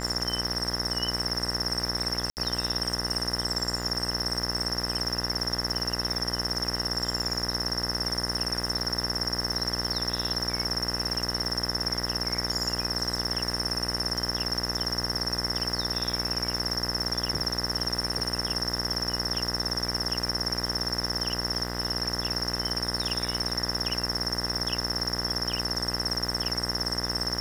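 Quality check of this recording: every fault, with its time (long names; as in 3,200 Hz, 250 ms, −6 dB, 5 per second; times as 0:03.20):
mains buzz 60 Hz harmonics 34 −34 dBFS
surface crackle 320 per second −36 dBFS
0:02.30–0:02.37: drop-out 69 ms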